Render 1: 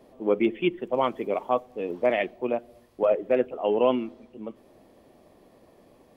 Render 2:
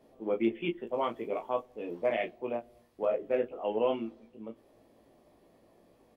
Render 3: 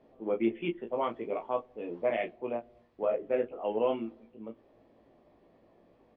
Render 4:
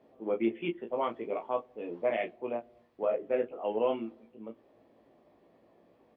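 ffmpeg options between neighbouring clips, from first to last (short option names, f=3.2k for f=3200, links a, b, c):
-af "aecho=1:1:18|35:0.668|0.335,volume=-8.5dB"
-af "lowpass=3.1k"
-af "highpass=f=130:p=1"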